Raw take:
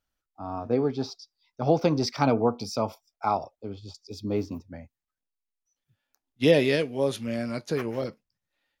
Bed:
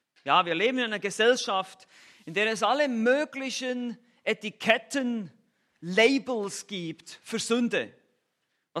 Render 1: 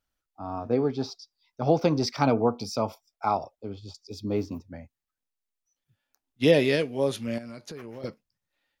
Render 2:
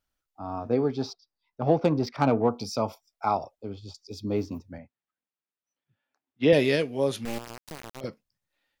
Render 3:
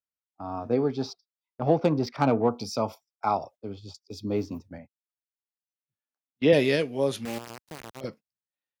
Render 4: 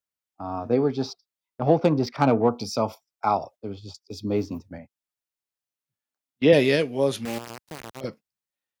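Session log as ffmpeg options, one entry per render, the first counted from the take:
ffmpeg -i in.wav -filter_complex "[0:a]asettb=1/sr,asplit=3[link_01][link_02][link_03];[link_01]atrim=end=7.384[link_04];[link_02]atrim=start=7.38:end=8.04,asetpts=PTS-STARTPTS,afade=type=in:duration=0.004:curve=qsin,afade=type=out:start_time=0.656:duration=0.004:curve=qsin,acompressor=threshold=-37dB:ratio=6:attack=3.2:release=140:knee=1:detection=peak[link_05];[link_03]atrim=start=8.036[link_06];[link_04][link_05]acrossfade=duration=0.004:curve1=hsin:curve2=qsin[link_07];[link_07][link_06]acrossfade=duration=0.004:curve1=qsin:curve2=hsin" out.wav
ffmpeg -i in.wav -filter_complex "[0:a]asplit=3[link_01][link_02][link_03];[link_01]afade=type=out:start_time=1.12:duration=0.02[link_04];[link_02]adynamicsmooth=sensitivity=1.5:basefreq=2300,afade=type=in:start_time=1.12:duration=0.02,afade=type=out:start_time=2.48:duration=0.02[link_05];[link_03]afade=type=in:start_time=2.48:duration=0.02[link_06];[link_04][link_05][link_06]amix=inputs=3:normalize=0,asettb=1/sr,asplit=3[link_07][link_08][link_09];[link_07]atrim=end=4.784[link_10];[link_08]atrim=start=4.78:end=6.53,asetpts=PTS-STARTPTS,afade=type=in:duration=0.004:curve=qsin,afade=type=out:start_time=1.746:duration=0.004:curve=qsin,highpass=140,lowpass=2900[link_11];[link_09]atrim=start=6.526[link_12];[link_10][link_11]acrossfade=duration=0.004:curve1=hsin:curve2=qsin[link_13];[link_13][link_12]acrossfade=duration=0.004:curve1=qsin:curve2=hsin,asettb=1/sr,asplit=3[link_14][link_15][link_16];[link_14]atrim=end=7.254[link_17];[link_15]atrim=start=7.25:end=8.01,asetpts=PTS-STARTPTS,afade=type=in:duration=0.004:curve=qsin,afade=type=out:start_time=0.756:duration=0.004:curve=qsin,acrusher=bits=3:dc=4:mix=0:aa=0.000001[link_18];[link_16]atrim=start=8.006[link_19];[link_17][link_18]acrossfade=duration=0.004:curve1=hsin:curve2=qsin[link_20];[link_20][link_19]acrossfade=duration=0.004:curve1=qsin:curve2=hsin" out.wav
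ffmpeg -i in.wav -af "highpass=78,agate=range=-19dB:threshold=-46dB:ratio=16:detection=peak" out.wav
ffmpeg -i in.wav -af "volume=3dB" out.wav

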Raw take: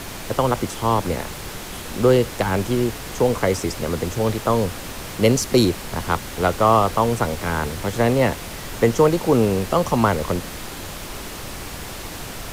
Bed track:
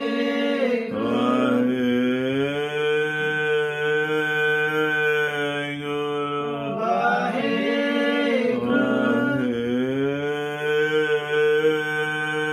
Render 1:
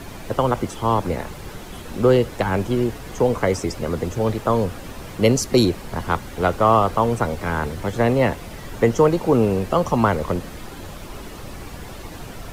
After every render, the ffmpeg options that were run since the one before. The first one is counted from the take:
ffmpeg -i in.wav -af "afftdn=noise_reduction=9:noise_floor=-34" out.wav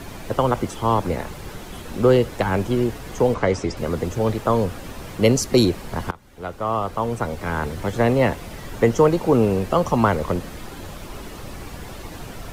ffmpeg -i in.wav -filter_complex "[0:a]asettb=1/sr,asplit=3[link_01][link_02][link_03];[link_01]atrim=end=3.344[link_04];[link_02]atrim=start=3.34:end=3.77,asetpts=PTS-STARTPTS,afade=type=in:duration=0.004:curve=qsin,afade=type=out:start_time=0.426:duration=0.004:curve=qsin,lowpass=5700[link_05];[link_03]atrim=start=3.766[link_06];[link_04][link_05]acrossfade=duration=0.004:curve1=hsin:curve2=qsin[link_07];[link_07][link_06]acrossfade=duration=0.004:curve1=qsin:curve2=hsin,asplit=2[link_08][link_09];[link_08]atrim=end=6.11,asetpts=PTS-STARTPTS,afade=type=out:start_time=6.106:duration=0.004:curve=hsin:silence=0.0707946[link_10];[link_09]atrim=start=6.11,asetpts=PTS-STARTPTS,afade=type=in:duration=1.71:silence=0.0707946[link_11];[link_10][link_11]concat=n=2:v=0:a=1" out.wav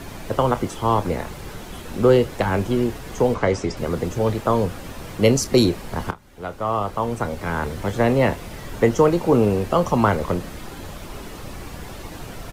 ffmpeg -i in.wav -filter_complex "[0:a]asplit=2[link_01][link_02];[link_02]adelay=29,volume=-13dB[link_03];[link_01][link_03]amix=inputs=2:normalize=0" out.wav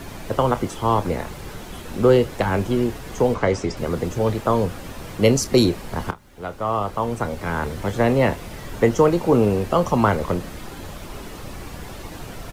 ffmpeg -i in.wav -af "acrusher=bits=10:mix=0:aa=0.000001" out.wav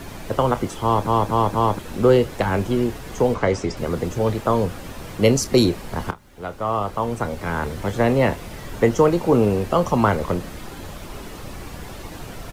ffmpeg -i in.wav -filter_complex "[0:a]asplit=5[link_01][link_02][link_03][link_04][link_05];[link_01]atrim=end=1.072[link_06];[link_02]atrim=start=0.828:end=1.072[link_07];[link_03]atrim=start=0.828:end=1.072[link_08];[link_04]atrim=start=0.828:end=1.072[link_09];[link_05]atrim=start=1.788[link_10];[link_06][link_07]acrossfade=duration=0.004:curve1=hsin:curve2=hsin[link_11];[link_11][link_08]acrossfade=duration=0.004:curve1=hsin:curve2=hsin[link_12];[link_12][link_09]acrossfade=duration=0.004:curve1=hsin:curve2=hsin[link_13];[link_13][link_10]acrossfade=duration=0.004:curve1=hsin:curve2=hsin" out.wav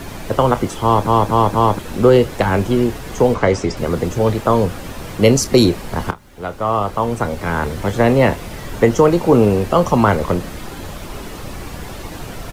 ffmpeg -i in.wav -af "volume=5dB,alimiter=limit=-1dB:level=0:latency=1" out.wav

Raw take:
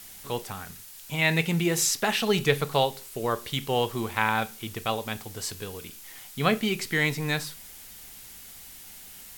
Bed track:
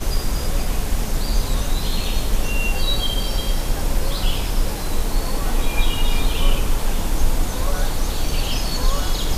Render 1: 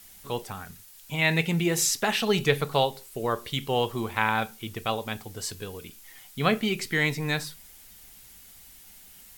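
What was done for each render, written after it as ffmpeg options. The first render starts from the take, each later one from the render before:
ffmpeg -i in.wav -af "afftdn=noise_reduction=6:noise_floor=-46" out.wav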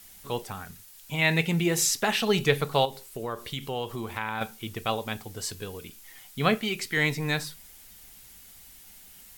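ffmpeg -i in.wav -filter_complex "[0:a]asettb=1/sr,asplit=3[link_01][link_02][link_03];[link_01]atrim=end=2.854[link_04];[link_02]atrim=start=2.85:end=4.41,asetpts=PTS-STARTPTS,afade=type=in:duration=0.004:curve=qsin,afade=type=out:start_time=1.556:duration=0.004:curve=qsin,acompressor=threshold=-32dB:ratio=2:attack=3.2:release=140:knee=1:detection=peak[link_05];[link_03]atrim=start=4.406[link_06];[link_04][link_05]acrossfade=duration=0.004:curve1=hsin:curve2=qsin[link_07];[link_07][link_06]acrossfade=duration=0.004:curve1=qsin:curve2=hsin,asettb=1/sr,asplit=3[link_08][link_09][link_10];[link_08]atrim=end=6.554[link_11];[link_09]atrim=start=6.55:end=6.97,asetpts=PTS-STARTPTS,afade=type=in:duration=0.004:curve=qsin,afade=type=out:start_time=0.416:duration=0.004:curve=qsin,lowshelf=frequency=480:gain=-6[link_12];[link_10]atrim=start=6.966[link_13];[link_11][link_12]acrossfade=duration=0.004:curve1=hsin:curve2=qsin[link_14];[link_14][link_13]acrossfade=duration=0.004:curve1=qsin:curve2=hsin" out.wav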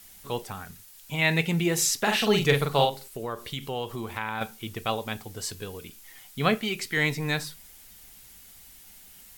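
ffmpeg -i in.wav -filter_complex "[0:a]asettb=1/sr,asplit=3[link_01][link_02][link_03];[link_01]atrim=end=2.014[link_04];[link_02]atrim=start=2.01:end=3.08,asetpts=PTS-STARTPTS,afade=type=in:duration=0.004:curve=qsin,afade=type=out:start_time=1.066:duration=0.004:curve=qsin,asplit=2[link_05][link_06];[link_06]adelay=43,volume=-3.5dB[link_07];[link_05][link_07]amix=inputs=2:normalize=0,atrim=end_sample=47187[link_08];[link_03]atrim=start=3.076[link_09];[link_04][link_08]acrossfade=duration=0.004:curve1=hsin:curve2=qsin[link_10];[link_10][link_09]acrossfade=duration=0.004:curve1=qsin:curve2=hsin" out.wav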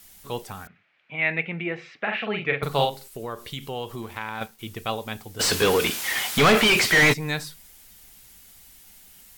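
ffmpeg -i in.wav -filter_complex "[0:a]asettb=1/sr,asplit=3[link_01][link_02][link_03];[link_01]atrim=end=0.674[link_04];[link_02]atrim=start=0.67:end=2.63,asetpts=PTS-STARTPTS,afade=type=in:duration=0.004:curve=qsin,afade=type=out:start_time=1.956:duration=0.004:curve=qsin,highpass=250,equalizer=frequency=260:width_type=q:width=4:gain=-5,equalizer=frequency=400:width_type=q:width=4:gain=-7,equalizer=frequency=940:width_type=q:width=4:gain=-8,equalizer=frequency=2300:width_type=q:width=4:gain=6,lowpass=frequency=2400:width=0.5412,lowpass=frequency=2400:width=1.3066[link_05];[link_03]atrim=start=2.626[link_06];[link_04][link_05]acrossfade=duration=0.004:curve1=hsin:curve2=qsin[link_07];[link_07][link_06]acrossfade=duration=0.004:curve1=qsin:curve2=hsin,asettb=1/sr,asplit=3[link_08][link_09][link_10];[link_08]atrim=end=4.024[link_11];[link_09]atrim=start=4.02:end=4.59,asetpts=PTS-STARTPTS,afade=type=in:duration=0.004:curve=qsin,afade=type=out:start_time=0.566:duration=0.004:curve=qsin,aeval=exprs='sgn(val(0))*max(abs(val(0))-0.00335,0)':channel_layout=same[link_12];[link_10]atrim=start=4.586[link_13];[link_11][link_12]acrossfade=duration=0.004:curve1=hsin:curve2=qsin[link_14];[link_14][link_13]acrossfade=duration=0.004:curve1=qsin:curve2=hsin,asplit=3[link_15][link_16][link_17];[link_15]afade=type=out:start_time=5.39:duration=0.02[link_18];[link_16]asplit=2[link_19][link_20];[link_20]highpass=frequency=720:poles=1,volume=37dB,asoftclip=type=tanh:threshold=-8.5dB[link_21];[link_19][link_21]amix=inputs=2:normalize=0,lowpass=frequency=2900:poles=1,volume=-6dB,afade=type=in:start_time=5.39:duration=0.02,afade=type=out:start_time=7.12:duration=0.02[link_22];[link_17]afade=type=in:start_time=7.12:duration=0.02[link_23];[link_18][link_22][link_23]amix=inputs=3:normalize=0" out.wav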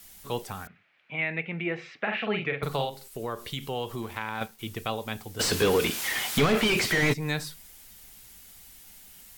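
ffmpeg -i in.wav -filter_complex "[0:a]alimiter=limit=-14dB:level=0:latency=1:release=403,acrossover=split=490[link_01][link_02];[link_02]acompressor=threshold=-29dB:ratio=2[link_03];[link_01][link_03]amix=inputs=2:normalize=0" out.wav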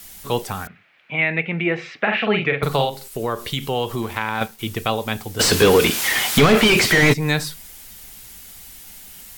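ffmpeg -i in.wav -af "volume=9.5dB,alimiter=limit=-2dB:level=0:latency=1" out.wav

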